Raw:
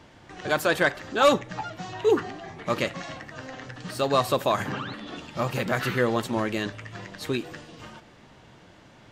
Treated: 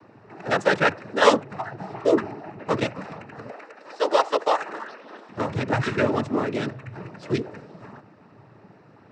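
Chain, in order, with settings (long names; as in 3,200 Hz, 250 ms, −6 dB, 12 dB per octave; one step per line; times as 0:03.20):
adaptive Wiener filter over 15 samples
0:03.49–0:05.28: high-pass filter 410 Hz 24 dB per octave
cochlear-implant simulation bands 12
level +3 dB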